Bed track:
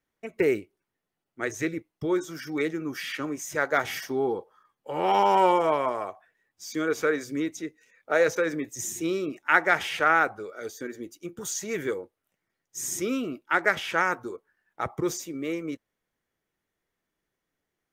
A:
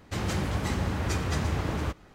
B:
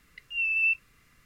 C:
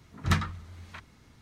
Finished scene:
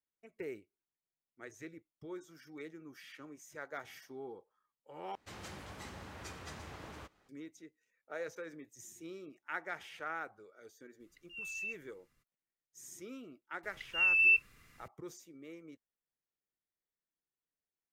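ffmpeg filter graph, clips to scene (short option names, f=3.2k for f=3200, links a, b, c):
-filter_complex "[2:a]asplit=2[a][b];[0:a]volume=-19.5dB[c];[1:a]lowshelf=f=310:g=-11[d];[a]equalizer=f=2k:w=1.1:g=-4.5[e];[c]asplit=2[f][g];[f]atrim=end=5.154[h];[d]atrim=end=2.14,asetpts=PTS-STARTPTS,volume=-13.5dB[i];[g]atrim=start=7.286[j];[e]atrim=end=1.25,asetpts=PTS-STARTPTS,volume=-13.5dB,afade=t=in:d=0.02,afade=t=out:st=1.23:d=0.02,adelay=10990[k];[b]atrim=end=1.25,asetpts=PTS-STARTPTS,volume=-0.5dB,afade=t=in:d=0.004:c=hsin,afade=t=out:st=1.246:d=0.004:c=hsin,adelay=13630[l];[h][i]acrossfade=d=0.004:c1=hsin:c2=hsin[m];[m][j]acrossfade=d=0.004:c1=hsin:c2=hsin[n];[n][k][l]amix=inputs=3:normalize=0"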